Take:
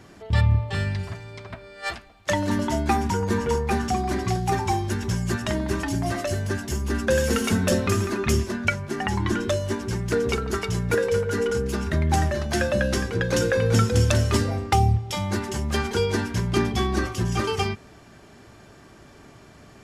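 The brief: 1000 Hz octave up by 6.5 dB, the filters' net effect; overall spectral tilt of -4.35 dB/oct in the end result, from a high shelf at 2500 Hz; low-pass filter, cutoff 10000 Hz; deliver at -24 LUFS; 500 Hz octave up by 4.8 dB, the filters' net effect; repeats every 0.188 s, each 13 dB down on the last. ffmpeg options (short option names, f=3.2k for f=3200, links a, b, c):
-af "lowpass=10k,equalizer=f=500:t=o:g=4,equalizer=f=1k:t=o:g=8.5,highshelf=f=2.5k:g=-7,aecho=1:1:188|376|564:0.224|0.0493|0.0108,volume=-2.5dB"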